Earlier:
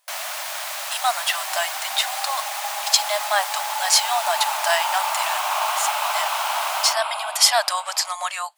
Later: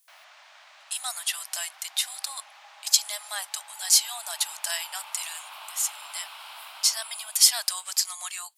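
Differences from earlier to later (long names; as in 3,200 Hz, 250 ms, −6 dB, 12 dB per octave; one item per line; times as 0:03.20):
first sound: add head-to-tape spacing loss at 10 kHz 42 dB
second sound −5.0 dB
master: add first difference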